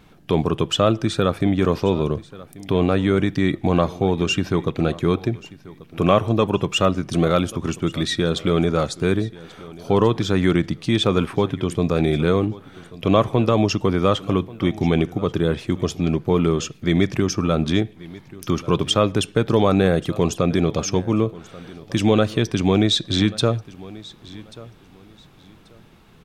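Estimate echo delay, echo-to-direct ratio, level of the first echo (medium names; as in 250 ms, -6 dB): 1136 ms, -20.0 dB, -20.0 dB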